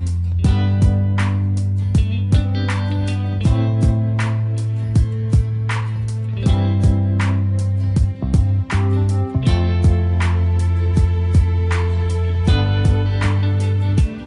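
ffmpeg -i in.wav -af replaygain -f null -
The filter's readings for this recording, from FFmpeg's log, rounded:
track_gain = +2.9 dB
track_peak = 0.379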